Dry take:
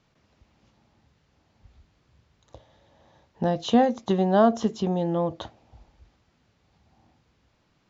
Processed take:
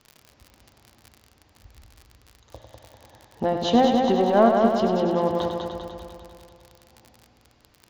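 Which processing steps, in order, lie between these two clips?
in parallel at −5 dB: soft clipping −24 dBFS, distortion −7 dB
on the sum: parametric band 170 Hz −10.5 dB 0.35 octaves
treble cut that deepens with the level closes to 2,200 Hz, closed at −18 dBFS
on a send: echo machine with several playback heads 99 ms, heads first and second, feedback 65%, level −7 dB
on the sum: surface crackle 58 per second −34 dBFS
parametric band 4,700 Hz +3.5 dB 0.21 octaves

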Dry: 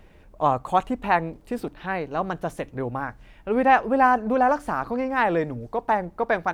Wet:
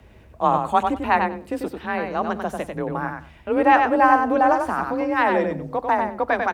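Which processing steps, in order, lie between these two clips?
frequency shifter +33 Hz
repeating echo 95 ms, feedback 16%, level −5 dB
level +1.5 dB

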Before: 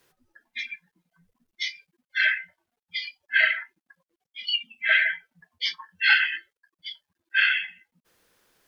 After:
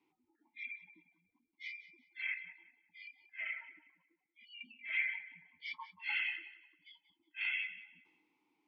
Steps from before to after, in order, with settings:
0:02.34–0:04.61: parametric band 3,700 Hz −10 dB 1.8 octaves
gate on every frequency bin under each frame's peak −25 dB strong
transient designer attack −10 dB, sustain +7 dB
formant filter u
feedback echo with a high-pass in the loop 183 ms, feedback 27%, high-pass 160 Hz, level −15 dB
level +3 dB

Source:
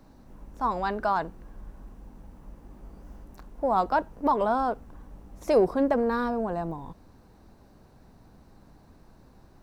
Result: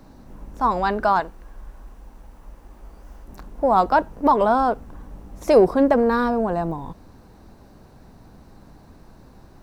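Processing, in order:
0:01.20–0:03.28: parametric band 160 Hz −11 dB 2.7 octaves
level +7 dB

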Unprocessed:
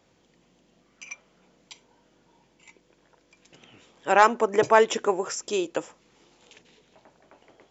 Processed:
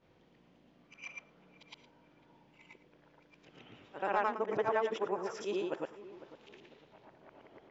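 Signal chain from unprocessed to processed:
every overlapping window played backwards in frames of 230 ms
high-frequency loss of the air 220 metres
downward compressor 2 to 1, threshold −39 dBFS, peak gain reduction 12.5 dB
on a send: delay with a low-pass on its return 500 ms, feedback 33%, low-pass 2,000 Hz, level −16 dB
on the sum: level +2 dB

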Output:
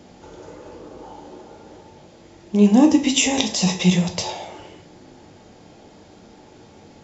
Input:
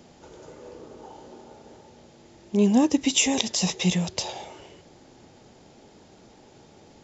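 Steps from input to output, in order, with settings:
high-shelf EQ 6,600 Hz −6 dB
dense smooth reverb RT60 0.5 s, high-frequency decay 0.75×, pre-delay 0 ms, DRR 3.5 dB
level +4 dB

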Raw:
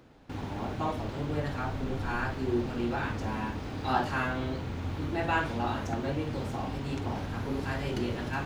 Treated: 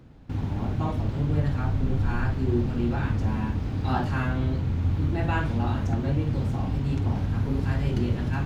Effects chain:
bass and treble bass +13 dB, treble −1 dB
level −1.5 dB

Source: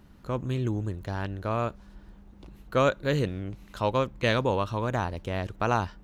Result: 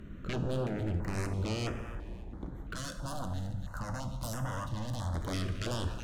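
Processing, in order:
adaptive Wiener filter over 9 samples
delay with a high-pass on its return 275 ms, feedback 39%, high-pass 2,900 Hz, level −14 dB
brickwall limiter −23 dBFS, peak gain reduction 11.5 dB
sine wavefolder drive 10 dB, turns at −23 dBFS
0:02.74–0:05.15: phaser with its sweep stopped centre 970 Hz, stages 4
dynamic equaliser 760 Hz, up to −6 dB, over −45 dBFS, Q 1
mains-hum notches 50/100/150/200 Hz
dense smooth reverb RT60 1.8 s, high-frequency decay 0.5×, DRR 6.5 dB
notch on a step sequencer 3 Hz 850–4,200 Hz
level −5 dB

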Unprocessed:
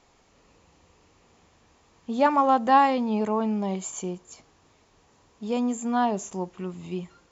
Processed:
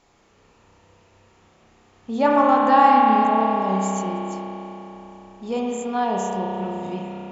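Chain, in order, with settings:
spring reverb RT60 3.8 s, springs 31 ms, chirp 70 ms, DRR −3.5 dB

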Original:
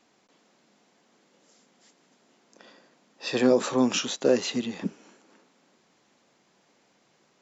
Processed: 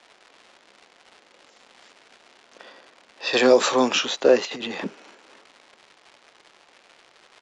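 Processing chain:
surface crackle 280 per second −41 dBFS
three-way crossover with the lows and the highs turned down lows −14 dB, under 370 Hz, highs −14 dB, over 4,800 Hz
downsampling to 22,050 Hz
0:03.33–0:03.89: high-shelf EQ 3,700 Hz +12 dB
0:04.45–0:04.85: compressor whose output falls as the input rises −40 dBFS, ratio −1
level +8 dB

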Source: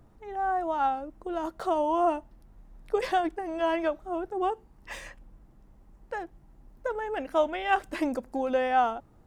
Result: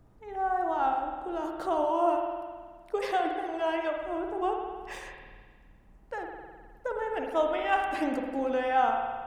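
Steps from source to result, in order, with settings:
tape wow and flutter 27 cents
0:01.84–0:03.97: low-shelf EQ 200 Hz −8 dB
spring reverb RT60 1.6 s, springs 52 ms, chirp 75 ms, DRR 2 dB
level −2.5 dB

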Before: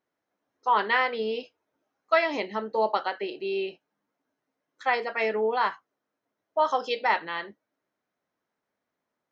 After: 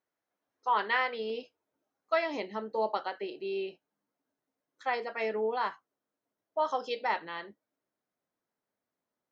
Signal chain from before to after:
parametric band 220 Hz −3.5 dB 2.2 octaves, from 0:01.30 2,000 Hz
level −4.5 dB

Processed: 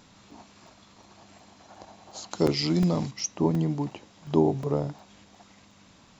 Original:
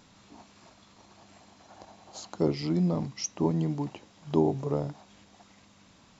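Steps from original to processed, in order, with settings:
0:02.31–0:03.11: high-shelf EQ 2,200 Hz +11.5 dB
regular buffer underruns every 0.36 s, samples 128, zero, from 0:00.31
level +2.5 dB

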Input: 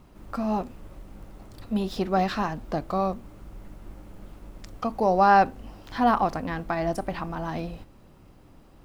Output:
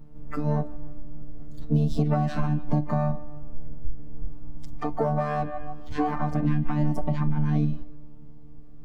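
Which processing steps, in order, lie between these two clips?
phases set to zero 149 Hz
low-shelf EQ 130 Hz +12 dB
pitch-shifted copies added +7 semitones −8 dB, +12 semitones −17 dB
on a send: bucket-brigade delay 151 ms, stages 4,096, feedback 47%, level −15 dB
on the sum: noise reduction from a noise print of the clip's start 9 dB
in parallel at −6 dB: hard clipping −21 dBFS, distortion −9 dB
on the sum: downward compressor 12 to 1, threshold −23 dBFS, peak gain reduction 11 dB
tilt shelving filter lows +7.5 dB, about 700 Hz

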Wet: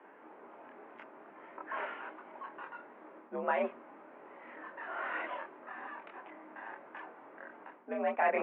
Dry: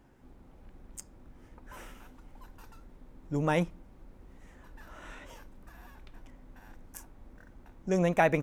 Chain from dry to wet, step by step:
multi-voice chorus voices 6, 0.4 Hz, delay 25 ms, depth 3.1 ms
reversed playback
downward compressor 12 to 1, threshold −39 dBFS, peak gain reduction 17.5 dB
reversed playback
single-sideband voice off tune +59 Hz 150–3,000 Hz
three-way crossover with the lows and the highs turned down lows −16 dB, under 530 Hz, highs −19 dB, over 2,300 Hz
level +16.5 dB

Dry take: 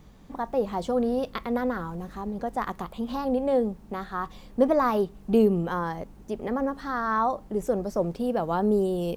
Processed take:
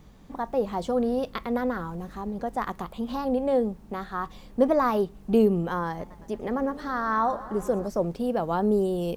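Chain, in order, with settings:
0:05.88–0:07.88: feedback echo with a swinging delay time 112 ms, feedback 76%, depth 131 cents, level −17 dB

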